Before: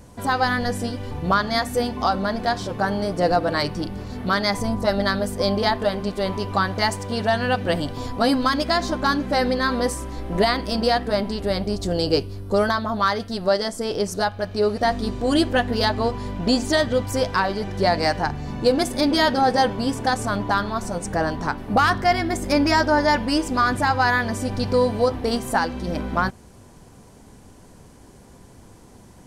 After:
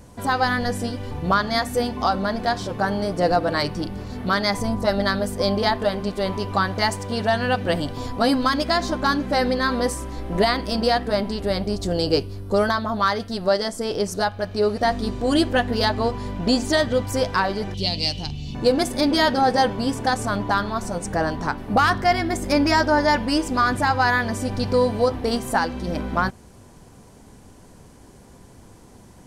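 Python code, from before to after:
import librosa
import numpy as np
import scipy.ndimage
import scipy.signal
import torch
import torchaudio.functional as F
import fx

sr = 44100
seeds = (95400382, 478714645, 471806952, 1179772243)

y = fx.curve_eq(x, sr, hz=(140.0, 1700.0, 2900.0, 9900.0), db=(0, -22, 10, -3), at=(17.74, 18.55))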